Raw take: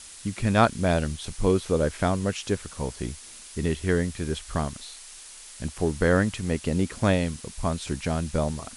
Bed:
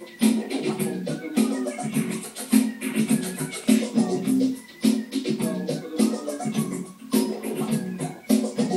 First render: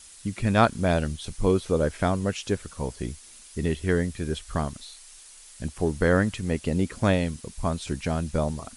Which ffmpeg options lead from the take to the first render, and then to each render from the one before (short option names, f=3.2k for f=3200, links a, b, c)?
-af "afftdn=nr=6:nf=-45"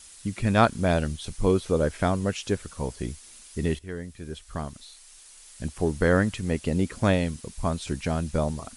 -filter_complex "[0:a]asplit=2[a][b];[a]atrim=end=3.79,asetpts=PTS-STARTPTS,afade=t=out:st=3.786:d=0.004:c=hsin:silence=0.188365[c];[b]atrim=start=3.79,asetpts=PTS-STARTPTS,afade=t=in:d=1.88:silence=0.188365[d];[c][d]concat=n=2:v=0:a=1"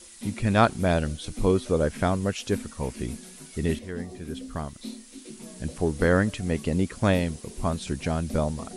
-filter_complex "[1:a]volume=-18dB[a];[0:a][a]amix=inputs=2:normalize=0"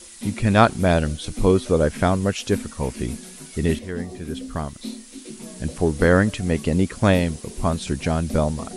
-af "volume=5dB,alimiter=limit=-2dB:level=0:latency=1"